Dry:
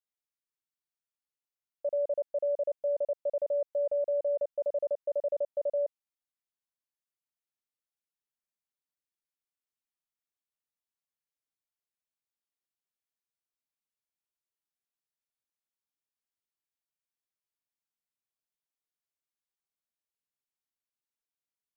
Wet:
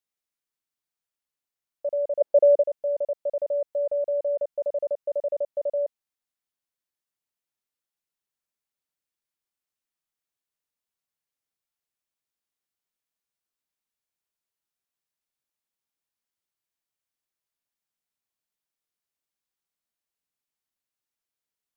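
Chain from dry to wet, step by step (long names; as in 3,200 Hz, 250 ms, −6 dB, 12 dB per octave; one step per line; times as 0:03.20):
0:02.20–0:02.61: parametric band 570 Hz → 380 Hz +12 dB 1.8 octaves
level +3.5 dB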